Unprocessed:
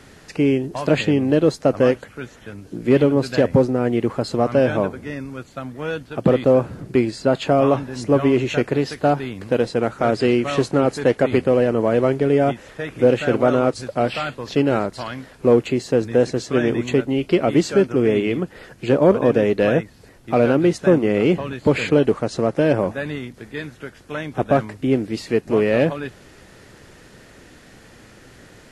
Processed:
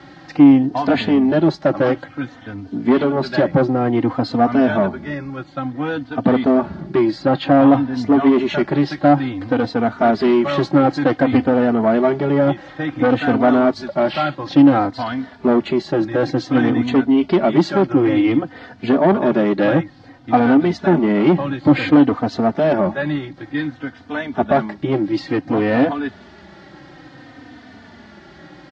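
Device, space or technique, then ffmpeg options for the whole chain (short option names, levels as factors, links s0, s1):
barber-pole flanger into a guitar amplifier: -filter_complex "[0:a]asplit=2[s0][s1];[s1]adelay=3.2,afreqshift=-0.56[s2];[s0][s2]amix=inputs=2:normalize=1,asoftclip=type=tanh:threshold=0.168,highpass=86,equalizer=f=120:t=q:w=4:g=-3,equalizer=f=290:t=q:w=4:g=7,equalizer=f=450:t=q:w=4:g=-10,equalizer=f=780:t=q:w=4:g=6,equalizer=f=2600:t=q:w=4:g=-7,lowpass=f=4500:w=0.5412,lowpass=f=4500:w=1.3066,asettb=1/sr,asplit=3[s3][s4][s5];[s3]atrim=end=7.234[s6];[s4]atrim=start=7.23:end=7.97,asetpts=PTS-STARTPTS,afade=t=in:d=0.004:c=qsin,afade=t=out:st=0.736:d=0.004:c=qsin,lowpass=5600[s7];[s5]atrim=start=7.966[s8];[s6][s7]acrossfade=d=0.004:c1=hsin:c2=qsin[s9];[s9][s8]acrossfade=d=0.004:c1=qsin:c2=hsin,volume=2.51"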